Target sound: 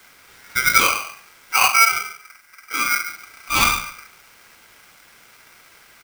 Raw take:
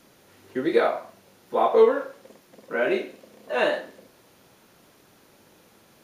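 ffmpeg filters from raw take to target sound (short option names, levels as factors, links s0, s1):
-filter_complex "[0:a]asplit=2[s0][s1];[s1]alimiter=limit=0.211:level=0:latency=1:release=394,volume=1.12[s2];[s0][s2]amix=inputs=2:normalize=0,asettb=1/sr,asplit=3[s3][s4][s5];[s3]atrim=end=1.724[s6];[s4]atrim=start=1.72:end=3.08,asetpts=PTS-STARTPTS,afade=t=in:d=0.004:c=qsin,afade=t=out:st=1.356:d=0.004:c=qsin,equalizer=f=2400:w=0.45:g=-13.5[s7];[s5]atrim=start=3.076[s8];[s6][s7]acrossfade=d=0.004:c1=hsin:c2=qsin[s9];[s9][s8]acrossfade=d=0.004:c1=qsin:c2=hsin,asplit=2[s10][s11];[s11]adelay=142,lowpass=f=1400:p=1,volume=0.237,asplit=2[s12][s13];[s13]adelay=142,lowpass=f=1400:p=1,volume=0.16[s14];[s10][s12][s14]amix=inputs=3:normalize=0,aeval=exprs='val(0)*sgn(sin(2*PI*1800*n/s))':c=same"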